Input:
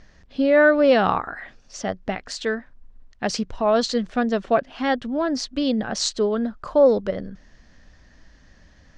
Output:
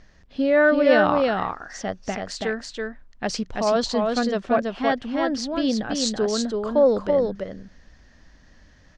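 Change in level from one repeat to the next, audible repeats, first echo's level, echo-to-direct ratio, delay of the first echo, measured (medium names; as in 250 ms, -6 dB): no regular repeats, 1, -3.5 dB, -3.5 dB, 330 ms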